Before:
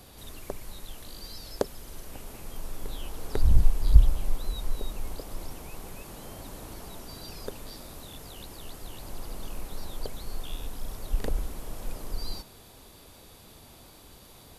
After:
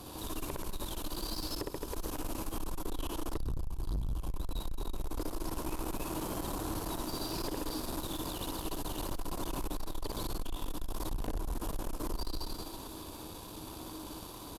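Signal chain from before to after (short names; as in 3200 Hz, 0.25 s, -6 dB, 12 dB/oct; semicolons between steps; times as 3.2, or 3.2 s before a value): thirty-one-band EQ 315 Hz +12 dB, 1000 Hz +9 dB, 2000 Hz -11 dB; reverse bouncing-ball echo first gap 60 ms, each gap 1.2×, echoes 5; compressor 3:1, threshold -31 dBFS, peak gain reduction 18.5 dB; tube stage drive 36 dB, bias 0.7; gain +6 dB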